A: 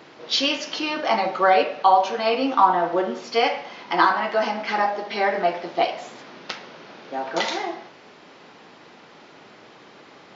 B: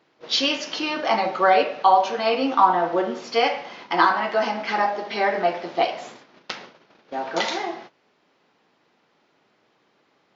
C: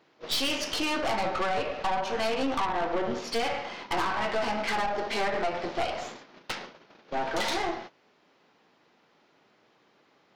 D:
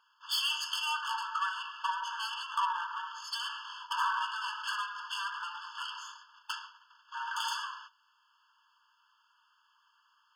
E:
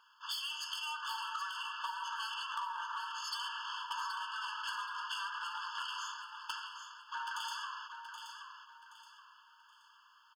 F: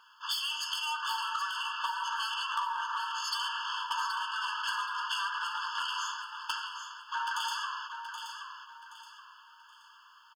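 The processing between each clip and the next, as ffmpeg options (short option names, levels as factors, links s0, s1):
-af "agate=range=0.141:threshold=0.01:ratio=16:detection=peak"
-af "acompressor=threshold=0.0891:ratio=20,aeval=exprs='(tanh(25.1*val(0)+0.65)-tanh(0.65))/25.1':c=same,volume=1.5"
-af "afftfilt=real='re*eq(mod(floor(b*sr/1024/880),2),1)':imag='im*eq(mod(floor(b*sr/1024/880),2),1)':win_size=1024:overlap=0.75"
-filter_complex "[0:a]acompressor=threshold=0.00891:ratio=8,asoftclip=type=tanh:threshold=0.0282,asplit=2[s0][s1];[s1]aecho=0:1:775|1550|2325|3100:0.398|0.135|0.046|0.0156[s2];[s0][s2]amix=inputs=2:normalize=0,volume=1.58"
-filter_complex "[0:a]asplit=2[s0][s1];[s1]adelay=12,volume=0.251[s2];[s0][s2]amix=inputs=2:normalize=0,volume=2"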